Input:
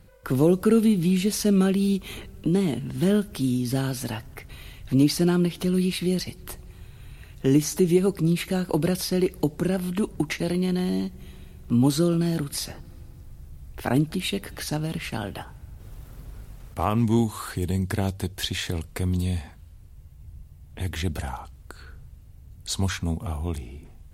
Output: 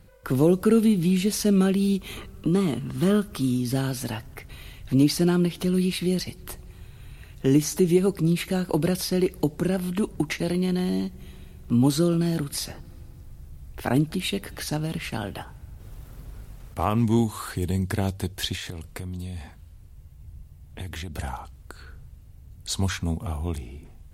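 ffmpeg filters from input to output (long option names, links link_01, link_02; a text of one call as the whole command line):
ffmpeg -i in.wav -filter_complex "[0:a]asettb=1/sr,asplit=3[link_01][link_02][link_03];[link_01]atrim=end=2.164[link_04];[link_02]atrim=start=2.16:end=3.61,asetpts=PTS-STARTPTS,afade=type=in:duration=0.004:curve=qsin,afade=type=out:start_time=1.446:duration=0.004:curve=qsin,equalizer=frequency=1200:width_type=o:width=0.21:gain=13[link_05];[link_03]atrim=start=3.606[link_06];[link_04][link_05]acrossfade=duration=0.004:curve1=hsin:curve2=qsin[link_07];[link_07][link_06]acrossfade=duration=0.004:curve1=qsin:curve2=hsin,asettb=1/sr,asplit=3[link_08][link_09][link_10];[link_08]atrim=end=18.554[link_11];[link_09]atrim=start=18.55:end=21.19,asetpts=PTS-STARTPTS,afade=type=in:duration=0.004:curve=qsin,afade=type=out:start_time=2.636:duration=0.004:curve=qsin,acompressor=threshold=-30dB:ratio=6:attack=3.2:release=140:knee=1:detection=peak[link_12];[link_10]atrim=start=21.186[link_13];[link_11][link_12]acrossfade=duration=0.004:curve1=hsin:curve2=qsin[link_14];[link_14][link_13]acrossfade=duration=0.004:curve1=qsin:curve2=hsin" out.wav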